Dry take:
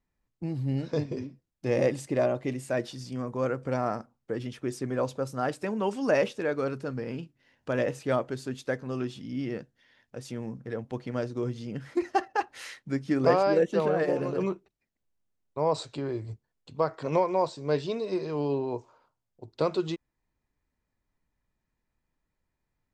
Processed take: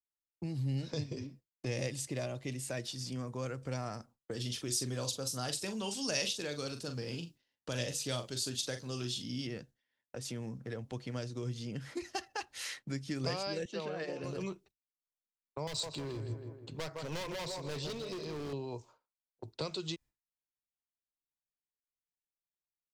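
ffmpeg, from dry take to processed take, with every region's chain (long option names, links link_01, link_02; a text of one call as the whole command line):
ffmpeg -i in.wav -filter_complex "[0:a]asettb=1/sr,asplit=3[link_01][link_02][link_03];[link_01]atrim=end=4.314[link_04];[link_02]atrim=start=4.31:end=9.47,asetpts=PTS-STARTPTS,afade=type=in:duration=0.004:curve=qsin,afade=type=out:start_time=5.156:duration=0.004:curve=qsin,highshelf=frequency=2800:width_type=q:width=1.5:gain=6.5,asplit=2[link_05][link_06];[link_06]adelay=41,volume=-8dB[link_07];[link_05][link_07]amix=inputs=2:normalize=0,atrim=end_sample=227556[link_08];[link_03]atrim=start=9.466[link_09];[link_04][link_08]acrossfade=duration=0.004:curve1=hsin:curve2=qsin[link_10];[link_10][link_09]acrossfade=duration=0.004:curve1=qsin:curve2=hsin,asettb=1/sr,asplit=3[link_11][link_12][link_13];[link_11]atrim=end=13.654[link_14];[link_12]atrim=start=13.65:end=14.24,asetpts=PTS-STARTPTS,afade=type=in:duration=0.004:curve=qsin,afade=type=out:start_time=0.586:duration=0.004:curve=qsin,highpass=200,lowpass=4800,bandreject=frequency=3400:width=21[link_15];[link_13]atrim=start=14.236[link_16];[link_14][link_15]acrossfade=duration=0.004:curve1=hsin:curve2=qsin[link_17];[link_17][link_16]acrossfade=duration=0.004:curve1=qsin:curve2=hsin,asettb=1/sr,asplit=3[link_18][link_19][link_20];[link_18]atrim=end=15.674[link_21];[link_19]atrim=start=15.67:end=18.53,asetpts=PTS-STARTPTS,afade=type=in:duration=0.004:curve=qsin,afade=type=out:start_time=2.856:duration=0.004:curve=qsin,asplit=2[link_22][link_23];[link_23]adelay=160,lowpass=frequency=3000:poles=1,volume=-9.5dB,asplit=2[link_24][link_25];[link_25]adelay=160,lowpass=frequency=3000:poles=1,volume=0.47,asplit=2[link_26][link_27];[link_27]adelay=160,lowpass=frequency=3000:poles=1,volume=0.47,asplit=2[link_28][link_29];[link_29]adelay=160,lowpass=frequency=3000:poles=1,volume=0.47,asplit=2[link_30][link_31];[link_31]adelay=160,lowpass=frequency=3000:poles=1,volume=0.47[link_32];[link_22][link_24][link_26][link_28][link_30][link_32]amix=inputs=6:normalize=0,atrim=end_sample=126126,asoftclip=type=hard:threshold=-29dB[link_33];[link_20]atrim=start=18.526[link_34];[link_21][link_33]acrossfade=duration=0.004:curve1=hsin:curve2=qsin[link_35];[link_35][link_34]acrossfade=duration=0.004:curve1=qsin:curve2=hsin,agate=range=-33dB:threshold=-46dB:ratio=3:detection=peak,lowshelf=frequency=120:gain=-6,acrossover=split=120|3000[link_36][link_37][link_38];[link_37]acompressor=threshold=-49dB:ratio=3[link_39];[link_36][link_39][link_38]amix=inputs=3:normalize=0,volume=4.5dB" out.wav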